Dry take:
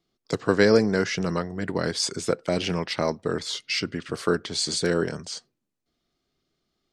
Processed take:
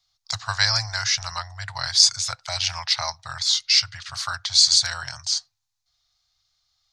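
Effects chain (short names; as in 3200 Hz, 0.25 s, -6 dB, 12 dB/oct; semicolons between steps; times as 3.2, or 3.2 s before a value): elliptic band-stop 110–790 Hz, stop band 40 dB; band shelf 5000 Hz +10 dB 1.1 oct; gain +2.5 dB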